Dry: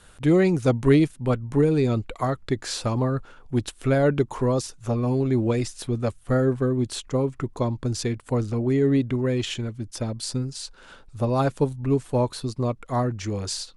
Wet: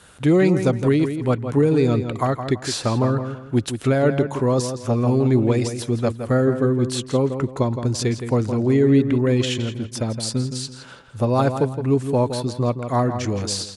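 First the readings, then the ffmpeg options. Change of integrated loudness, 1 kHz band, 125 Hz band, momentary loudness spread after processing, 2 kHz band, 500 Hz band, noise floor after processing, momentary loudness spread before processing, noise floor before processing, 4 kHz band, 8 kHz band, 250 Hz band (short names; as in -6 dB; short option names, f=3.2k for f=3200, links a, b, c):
+3.5 dB, +4.0 dB, +3.5 dB, 7 LU, +3.5 dB, +3.5 dB, -40 dBFS, 9 LU, -51 dBFS, +4.5 dB, +4.5 dB, +4.0 dB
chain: -filter_complex "[0:a]highpass=80,alimiter=limit=-13dB:level=0:latency=1:release=490,asplit=2[a][b];[b]adelay=166,lowpass=f=4k:p=1,volume=-8.5dB,asplit=2[c][d];[d]adelay=166,lowpass=f=4k:p=1,volume=0.3,asplit=2[e][f];[f]adelay=166,lowpass=f=4k:p=1,volume=0.3,asplit=2[g][h];[h]adelay=166,lowpass=f=4k:p=1,volume=0.3[i];[c][e][g][i]amix=inputs=4:normalize=0[j];[a][j]amix=inputs=2:normalize=0,volume=4.5dB"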